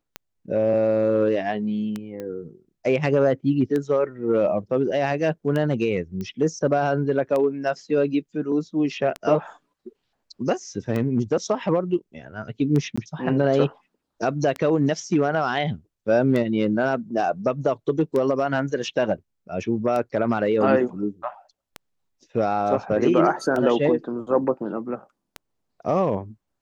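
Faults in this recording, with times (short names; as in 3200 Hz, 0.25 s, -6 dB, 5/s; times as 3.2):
tick 33 1/3 rpm -15 dBFS
2.2 pop -21 dBFS
6.21 pop -20 dBFS
12.96–12.97 gap 15 ms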